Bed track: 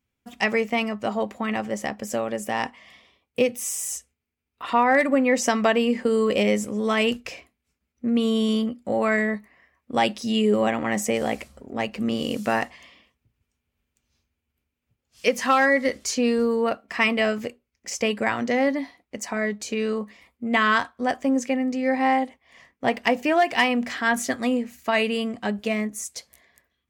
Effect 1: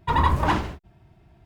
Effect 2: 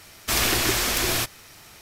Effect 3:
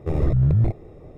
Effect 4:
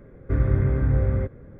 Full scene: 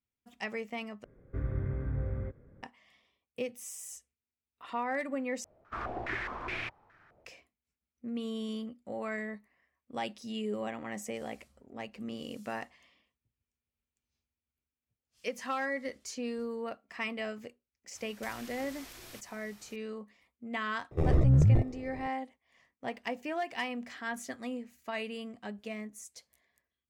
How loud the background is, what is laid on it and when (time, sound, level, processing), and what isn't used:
bed track -15 dB
1.04 replace with 4 -13 dB
5.44 replace with 2 -15.5 dB + stepped low-pass 4.8 Hz 600–2300 Hz
17.95 add 2 -11.5 dB + compressor 16:1, threshold -34 dBFS
20.91 add 3 -4 dB
not used: 1

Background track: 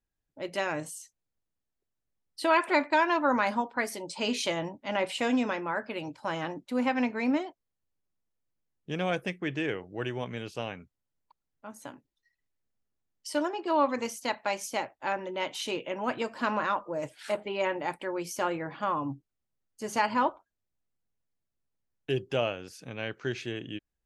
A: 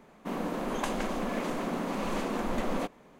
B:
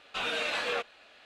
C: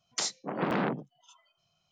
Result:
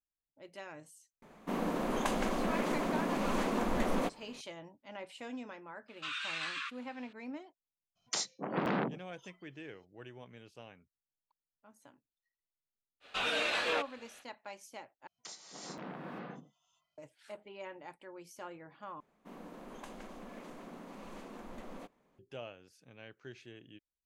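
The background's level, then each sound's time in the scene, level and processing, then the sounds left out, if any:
background track -16.5 dB
1.22 add A -1 dB
5.88 add B -6 dB + brick-wall FIR band-pass 990–9200 Hz
7.95 add C -3.5 dB, fades 0.02 s
13 add B -1 dB, fades 0.05 s
15.07 replace with C -17.5 dB + non-linear reverb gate 0.42 s rising, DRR -2 dB
19 replace with A -16.5 dB

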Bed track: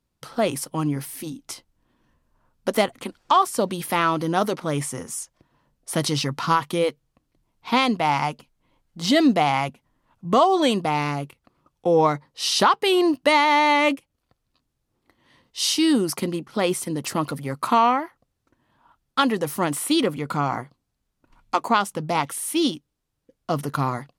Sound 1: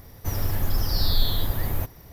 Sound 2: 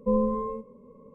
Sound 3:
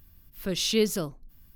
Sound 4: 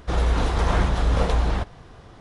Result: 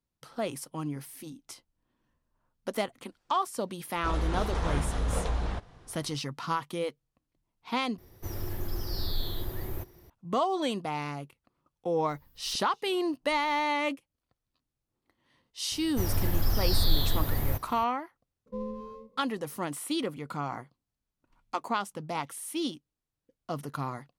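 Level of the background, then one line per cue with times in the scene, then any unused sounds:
bed track -10.5 dB
3.96 add 4 -9 dB
7.98 replace with 1 -10 dB + bell 360 Hz +14 dB 0.27 oct
12.09 add 3 -7 dB + flipped gate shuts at -25 dBFS, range -32 dB
15.72 add 1 -2.5 dB
18.46 add 2 -12.5 dB + median filter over 15 samples

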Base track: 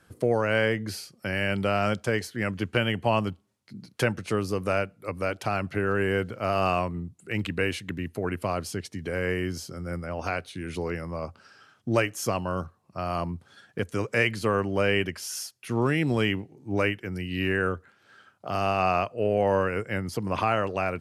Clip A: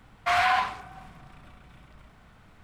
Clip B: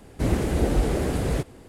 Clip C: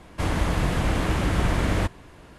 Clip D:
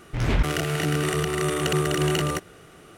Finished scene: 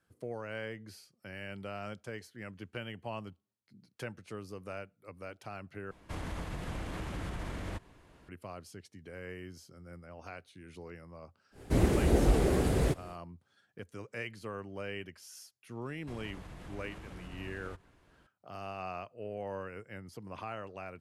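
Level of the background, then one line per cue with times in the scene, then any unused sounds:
base track -16.5 dB
5.91 replace with C -12 dB + limiter -18 dBFS
11.51 add B -3.5 dB, fades 0.10 s + bell 390 Hz +3.5 dB 0.2 oct
15.89 add C -17.5 dB + compressor 3:1, threshold -28 dBFS
not used: A, D

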